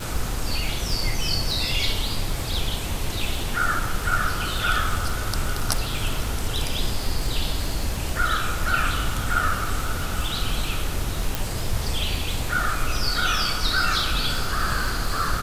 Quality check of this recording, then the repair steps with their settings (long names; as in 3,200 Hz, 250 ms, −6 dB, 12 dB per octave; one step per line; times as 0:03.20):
surface crackle 47 per second −28 dBFS
0:11.35: click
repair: click removal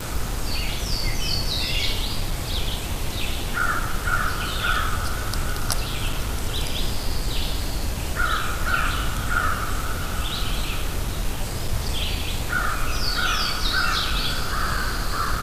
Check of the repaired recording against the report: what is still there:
none of them is left